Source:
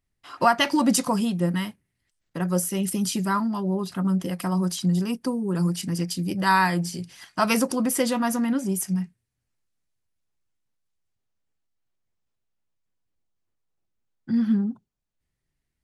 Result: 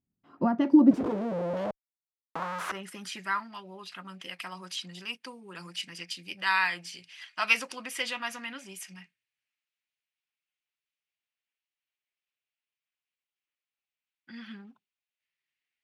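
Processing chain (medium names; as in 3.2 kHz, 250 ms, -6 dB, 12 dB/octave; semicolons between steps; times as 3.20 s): 0.91–2.72 s: Schmitt trigger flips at -36.5 dBFS; band-pass sweep 210 Hz -> 2.6 kHz, 0.28–3.59 s; trim +5.5 dB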